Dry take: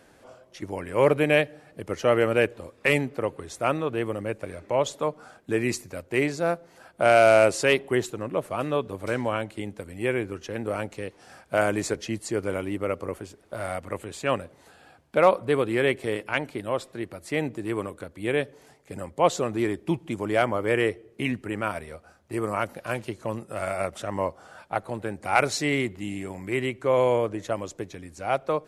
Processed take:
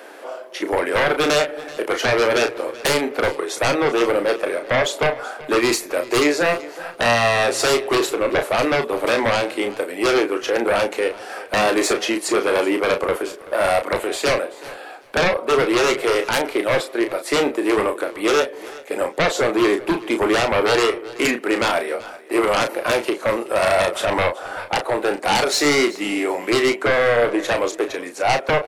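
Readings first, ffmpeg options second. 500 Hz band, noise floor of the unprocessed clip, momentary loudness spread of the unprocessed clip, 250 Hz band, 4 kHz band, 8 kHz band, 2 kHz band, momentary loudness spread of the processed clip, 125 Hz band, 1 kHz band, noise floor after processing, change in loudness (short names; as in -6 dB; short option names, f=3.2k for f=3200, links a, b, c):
+6.0 dB, -57 dBFS, 14 LU, +6.5 dB, +12.5 dB, +10.5 dB, +8.5 dB, 8 LU, 0.0 dB, +7.0 dB, -37 dBFS, +6.5 dB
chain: -filter_complex "[0:a]highpass=f=350:w=0.5412,highpass=f=350:w=1.3066,equalizer=f=7k:t=o:w=1.4:g=-7.5,acompressor=threshold=-24dB:ratio=6,aeval=exprs='0.2*sin(PI/2*4.47*val(0)/0.2)':c=same,asplit=2[a][b];[b]adelay=34,volume=-7dB[c];[a][c]amix=inputs=2:normalize=0,aecho=1:1:381|762:0.112|0.0202"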